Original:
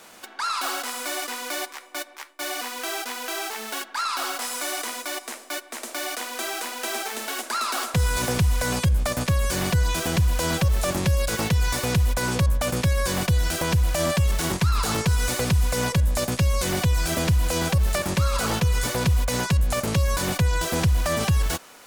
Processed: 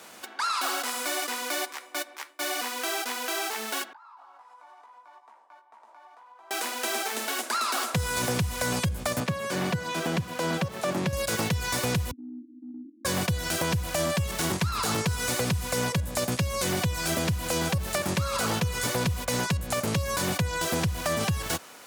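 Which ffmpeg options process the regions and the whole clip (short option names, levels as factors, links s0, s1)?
-filter_complex "[0:a]asettb=1/sr,asplit=3[s0][s1][s2];[s0]atrim=end=3.934[s3];[s1]atrim=start=3.93:end=6.51,asetpts=PTS-STARTPTS,afade=t=in:d=0.004:c=qsin,afade=t=out:st=2.576:d=0.004:c=qsin,bandpass=f=920:t=q:w=9.3,acompressor=threshold=0.00355:ratio=6:attack=3.2:release=140:knee=1:detection=peak,asplit=2[s4][s5];[s5]adelay=18,volume=0.531[s6];[s4][s6]amix=inputs=2:normalize=0,atrim=end_sample=113778[s7];[s2]atrim=start=6.506[s8];[s3][s7]acrossfade=d=0.004:c1=hsin:c2=qsin[s9];[s9][s8]acrossfade=d=0.004:c1=qsin:c2=hsin,asettb=1/sr,asplit=3[s10][s11][s12];[s10]atrim=end=9.204[s13];[s11]atrim=start=9.2:end=11.13,asetpts=PTS-STARTPTS,afade=t=in:d=0.004:c=qsin,afade=t=out:st=1.926:d=0.004:c=qsin,highpass=f=130:w=0.5412,highpass=f=130:w=1.3066,highshelf=f=4600:g=-11.5,aeval=exprs='sgn(val(0))*max(abs(val(0))-0.00188,0)':c=same[s14];[s12]atrim=start=11.126[s15];[s13][s14]acrossfade=d=0.004:c1=hsin:c2=qsin[s16];[s16][s15]acrossfade=d=0.004:c1=qsin:c2=hsin,asettb=1/sr,asplit=3[s17][s18][s19];[s17]atrim=end=12.114[s20];[s18]atrim=start=12.11:end=13.05,asetpts=PTS-STARTPTS,afade=t=in:d=0.004:c=qsin,afade=t=out:st=0.936:d=0.004:c=qsin,asuperpass=centerf=280:order=12:qfactor=2.9,acompressor=threshold=0.0112:ratio=3:attack=3.2:release=140:knee=1:detection=peak[s21];[s19]atrim=start=13.046[s22];[s20][s21]acrossfade=d=0.004:c1=hsin:c2=qsin[s23];[s23][s22]acrossfade=d=0.004:c1=qsin:c2=hsin,highpass=f=83:w=0.5412,highpass=f=83:w=1.3066,acompressor=threshold=0.0708:ratio=6"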